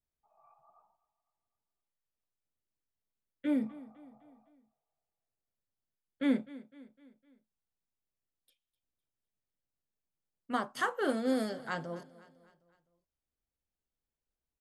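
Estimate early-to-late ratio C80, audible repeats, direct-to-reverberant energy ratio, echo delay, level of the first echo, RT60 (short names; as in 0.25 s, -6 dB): none, 3, none, 0.254 s, -19.0 dB, none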